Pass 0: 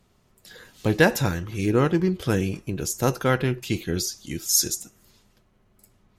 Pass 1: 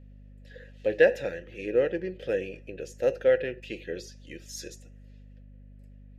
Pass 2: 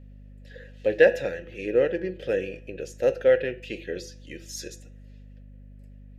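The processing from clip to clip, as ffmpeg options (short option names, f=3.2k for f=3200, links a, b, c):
-filter_complex "[0:a]asplit=3[a][b][c];[a]bandpass=f=530:t=q:w=8,volume=0dB[d];[b]bandpass=f=1.84k:t=q:w=8,volume=-6dB[e];[c]bandpass=f=2.48k:t=q:w=8,volume=-9dB[f];[d][e][f]amix=inputs=3:normalize=0,aeval=exprs='val(0)+0.002*(sin(2*PI*50*n/s)+sin(2*PI*2*50*n/s)/2+sin(2*PI*3*50*n/s)/3+sin(2*PI*4*50*n/s)/4+sin(2*PI*5*50*n/s)/5)':c=same,volume=6dB"
-af "bandreject=f=167.2:t=h:w=4,bandreject=f=334.4:t=h:w=4,bandreject=f=501.6:t=h:w=4,bandreject=f=668.8:t=h:w=4,bandreject=f=836:t=h:w=4,bandreject=f=1.0032k:t=h:w=4,bandreject=f=1.1704k:t=h:w=4,bandreject=f=1.3376k:t=h:w=4,bandreject=f=1.5048k:t=h:w=4,bandreject=f=1.672k:t=h:w=4,bandreject=f=1.8392k:t=h:w=4,bandreject=f=2.0064k:t=h:w=4,bandreject=f=2.1736k:t=h:w=4,bandreject=f=2.3408k:t=h:w=4,bandreject=f=2.508k:t=h:w=4,bandreject=f=2.6752k:t=h:w=4,bandreject=f=2.8424k:t=h:w=4,bandreject=f=3.0096k:t=h:w=4,bandreject=f=3.1768k:t=h:w=4,bandreject=f=3.344k:t=h:w=4,bandreject=f=3.5112k:t=h:w=4,bandreject=f=3.6784k:t=h:w=4,bandreject=f=3.8456k:t=h:w=4,bandreject=f=4.0128k:t=h:w=4,bandreject=f=4.18k:t=h:w=4,volume=3dB"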